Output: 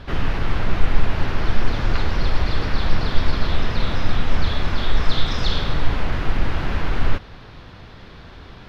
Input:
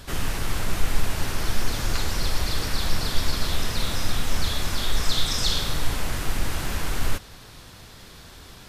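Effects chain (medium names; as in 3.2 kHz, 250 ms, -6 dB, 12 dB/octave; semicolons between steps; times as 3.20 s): distance through air 290 m; trim +6 dB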